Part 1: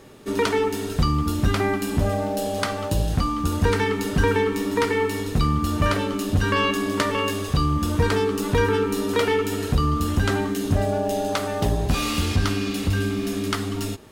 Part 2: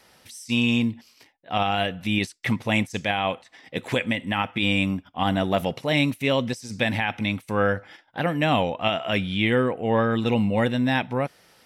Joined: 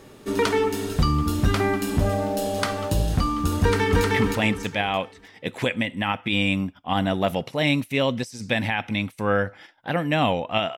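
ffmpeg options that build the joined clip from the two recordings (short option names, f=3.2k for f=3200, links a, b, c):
-filter_complex "[0:a]apad=whole_dur=10.77,atrim=end=10.77,atrim=end=4.042[a];[1:a]atrim=start=2.338:end=9.07[b];[a][b]acrossfade=d=0.004:c1=hsin:c2=hsin,asplit=2[c][d];[d]afade=t=in:st=3.61:d=0.01,afade=t=out:st=4.04:d=0.01,aecho=0:1:310|620|930|1240|1550:0.944061|0.330421|0.115647|0.0404766|0.0141668[e];[c][e]amix=inputs=2:normalize=0"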